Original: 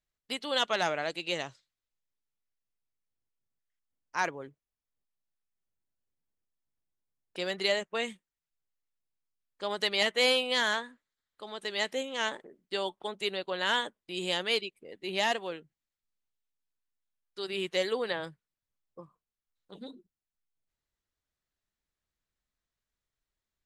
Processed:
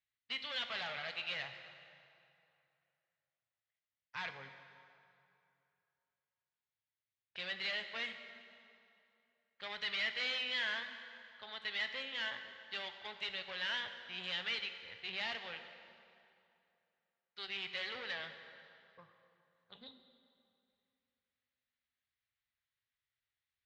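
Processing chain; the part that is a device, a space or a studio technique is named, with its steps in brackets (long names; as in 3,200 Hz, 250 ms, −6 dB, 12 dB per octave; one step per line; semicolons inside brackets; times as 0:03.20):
0:13.79–0:14.24: high-shelf EQ 4,600 Hz −11.5 dB
scooped metal amplifier (tube saturation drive 35 dB, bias 0.55; loudspeaker in its box 91–3,800 Hz, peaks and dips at 110 Hz +8 dB, 250 Hz +9 dB, 970 Hz −3 dB, 2,000 Hz +4 dB; guitar amp tone stack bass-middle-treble 10-0-10)
dense smooth reverb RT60 2.7 s, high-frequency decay 0.75×, DRR 7 dB
level +5.5 dB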